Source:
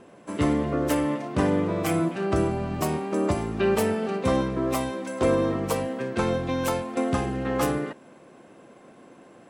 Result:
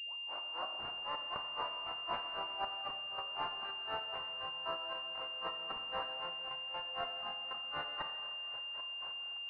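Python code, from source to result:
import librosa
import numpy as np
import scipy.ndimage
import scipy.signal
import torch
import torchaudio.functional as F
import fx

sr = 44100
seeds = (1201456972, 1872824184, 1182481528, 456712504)

y = fx.tape_start_head(x, sr, length_s=1.14)
y = scipy.signal.sosfilt(scipy.signal.butter(4, 930.0, 'highpass', fs=sr, output='sos'), y)
y = fx.over_compress(y, sr, threshold_db=-43.0, ratio=-1.0)
y = fx.step_gate(y, sr, bpm=127, pattern='xxxxxx.x.x.xxxx.', floor_db=-12.0, edge_ms=4.5)
y = fx.granulator(y, sr, seeds[0], grain_ms=174.0, per_s=3.9, spray_ms=100.0, spread_st=0)
y = fx.echo_feedback(y, sr, ms=743, feedback_pct=59, wet_db=-21)
y = fx.rev_schroeder(y, sr, rt60_s=2.1, comb_ms=27, drr_db=5.0)
y = fx.pwm(y, sr, carrier_hz=2800.0)
y = y * 10.0 ** (7.0 / 20.0)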